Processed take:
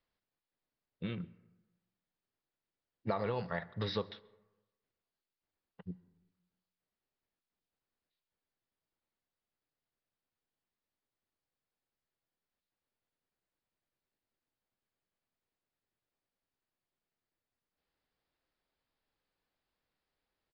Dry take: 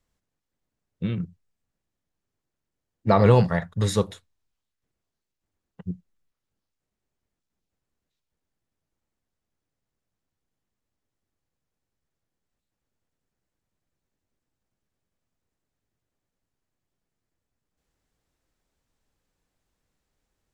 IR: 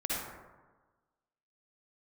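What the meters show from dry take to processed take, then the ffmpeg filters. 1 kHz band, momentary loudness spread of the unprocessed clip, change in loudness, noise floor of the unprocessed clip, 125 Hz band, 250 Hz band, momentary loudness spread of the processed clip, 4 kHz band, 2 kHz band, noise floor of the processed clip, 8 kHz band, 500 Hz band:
-15.0 dB, 20 LU, -17.0 dB, -85 dBFS, -19.5 dB, -16.0 dB, 15 LU, -7.5 dB, -10.5 dB, under -85 dBFS, under -30 dB, -15.5 dB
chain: -filter_complex "[0:a]lowshelf=f=250:g=-11.5,acompressor=threshold=0.0501:ratio=10,asplit=2[s0][s1];[1:a]atrim=start_sample=2205,asetrate=52920,aresample=44100,adelay=72[s2];[s1][s2]afir=irnorm=-1:irlink=0,volume=0.0501[s3];[s0][s3]amix=inputs=2:normalize=0,aresample=11025,aresample=44100,volume=0.596"

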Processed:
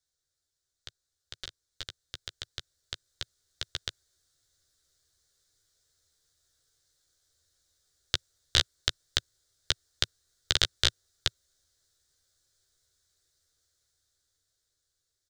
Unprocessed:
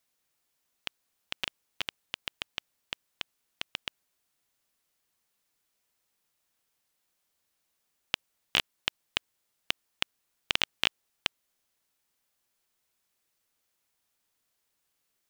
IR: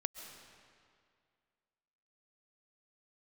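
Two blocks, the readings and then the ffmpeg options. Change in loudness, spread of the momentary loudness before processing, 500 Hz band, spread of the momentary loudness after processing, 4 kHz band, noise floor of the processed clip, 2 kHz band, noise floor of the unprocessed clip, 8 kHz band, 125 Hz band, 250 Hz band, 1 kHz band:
+4.0 dB, 14 LU, +2.5 dB, 17 LU, +3.0 dB, -84 dBFS, -2.5 dB, -79 dBFS, +8.5 dB, +11.5 dB, 0.0 dB, -2.0 dB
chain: -filter_complex "[0:a]firequalizer=gain_entry='entry(110,0);entry(190,-22);entry(370,-11);entry(540,-12);entry(920,-24);entry(1500,-10);entry(2600,-25);entry(3700,-6);entry(7200,-6);entry(12000,-19)':delay=0.05:min_phase=1,dynaudnorm=f=810:g=7:m=3.76,asplit=2[s0][s1];[s1]adelay=13,volume=0.501[s2];[s0][s2]amix=inputs=2:normalize=0,volume=1.5"

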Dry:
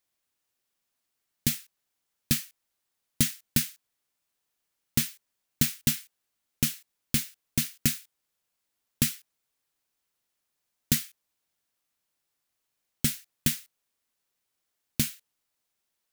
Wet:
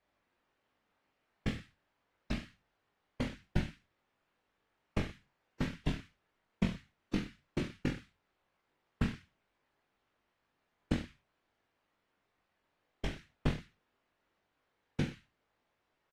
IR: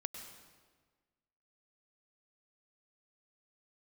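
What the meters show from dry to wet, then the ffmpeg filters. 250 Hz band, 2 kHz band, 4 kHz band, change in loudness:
-4.0 dB, -6.5 dB, -14.5 dB, -10.5 dB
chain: -af "equalizer=f=100:t=o:w=1.8:g=-8.5,acompressor=threshold=0.0141:ratio=8,lowpass=1900,lowshelf=f=270:g=5.5,bandreject=f=60:t=h:w=6,bandreject=f=120:t=h:w=6,bandreject=f=180:t=h:w=6,afftfilt=real='hypot(re,im)*cos(2*PI*random(0))':imag='hypot(re,im)*sin(2*PI*random(1))':win_size=512:overlap=0.75,aecho=1:1:20|42|66.2|92.82|122.1:0.631|0.398|0.251|0.158|0.1,volume=5.01" -ar 48000 -c:a aac -b:a 48k

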